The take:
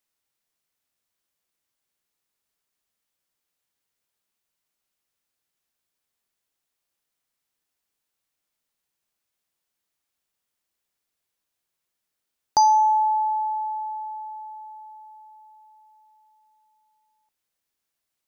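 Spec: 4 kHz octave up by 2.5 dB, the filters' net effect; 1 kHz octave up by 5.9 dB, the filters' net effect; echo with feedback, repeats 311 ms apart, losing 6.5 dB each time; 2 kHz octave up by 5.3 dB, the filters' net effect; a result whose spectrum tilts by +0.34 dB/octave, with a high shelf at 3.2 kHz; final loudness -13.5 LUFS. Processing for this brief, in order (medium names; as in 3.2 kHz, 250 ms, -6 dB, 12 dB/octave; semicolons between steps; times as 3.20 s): peaking EQ 1 kHz +6.5 dB; peaking EQ 2 kHz +4.5 dB; treble shelf 3.2 kHz -5 dB; peaking EQ 4 kHz +7 dB; feedback delay 311 ms, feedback 47%, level -6.5 dB; trim +3 dB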